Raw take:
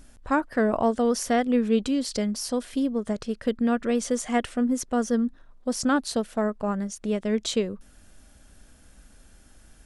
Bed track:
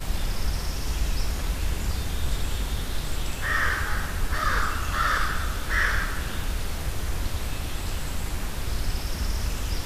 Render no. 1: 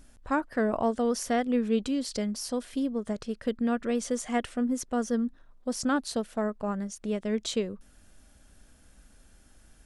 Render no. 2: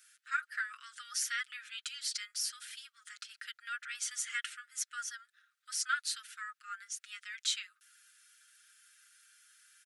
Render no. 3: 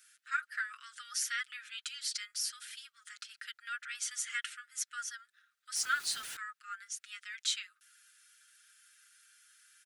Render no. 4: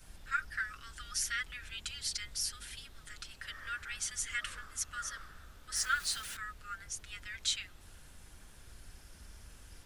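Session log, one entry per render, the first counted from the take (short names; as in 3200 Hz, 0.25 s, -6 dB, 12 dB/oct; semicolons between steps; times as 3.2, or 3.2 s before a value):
gain -4 dB
steep high-pass 1300 Hz 96 dB/oct; comb 6.4 ms, depth 70%
5.76–6.37 zero-crossing step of -41 dBFS
add bed track -26 dB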